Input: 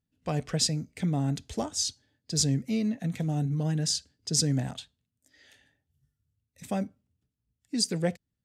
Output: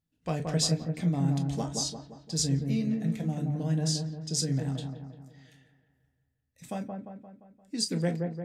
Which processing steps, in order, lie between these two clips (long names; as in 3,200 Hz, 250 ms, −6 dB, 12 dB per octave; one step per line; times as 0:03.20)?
speech leveller 2 s
delay with a low-pass on its return 174 ms, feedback 51%, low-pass 1,300 Hz, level −3.5 dB
on a send at −6 dB: convolution reverb, pre-delay 6 ms
on the sum: level −4 dB